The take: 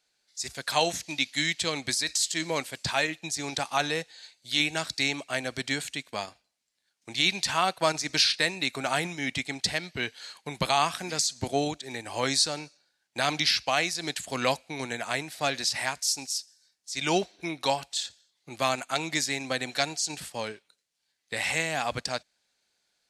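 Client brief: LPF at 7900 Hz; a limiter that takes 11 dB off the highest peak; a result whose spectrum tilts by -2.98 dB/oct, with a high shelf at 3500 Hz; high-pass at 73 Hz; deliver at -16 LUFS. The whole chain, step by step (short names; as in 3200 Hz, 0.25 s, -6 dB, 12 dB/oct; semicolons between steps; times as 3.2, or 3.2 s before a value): HPF 73 Hz; LPF 7900 Hz; high shelf 3500 Hz -6.5 dB; gain +19 dB; limiter -3.5 dBFS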